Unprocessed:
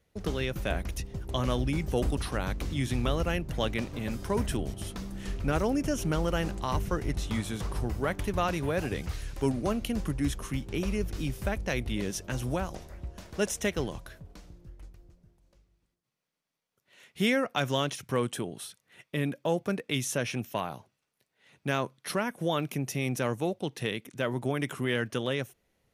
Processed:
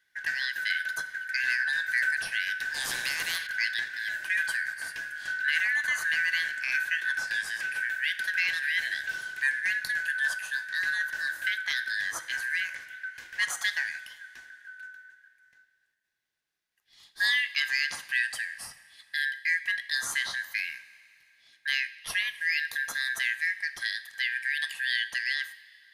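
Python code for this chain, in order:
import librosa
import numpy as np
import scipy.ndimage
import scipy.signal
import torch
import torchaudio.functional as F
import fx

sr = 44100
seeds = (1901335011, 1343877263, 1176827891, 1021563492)

y = fx.band_shuffle(x, sr, order='4123')
y = fx.rev_double_slope(y, sr, seeds[0], early_s=0.5, late_s=2.8, knee_db=-14, drr_db=10.5)
y = fx.spectral_comp(y, sr, ratio=2.0, at=(2.74, 3.47))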